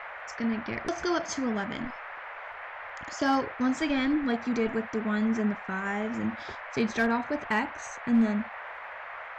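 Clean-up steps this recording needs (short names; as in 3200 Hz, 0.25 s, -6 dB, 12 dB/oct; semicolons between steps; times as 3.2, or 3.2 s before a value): clip repair -17 dBFS; de-click; noise print and reduce 30 dB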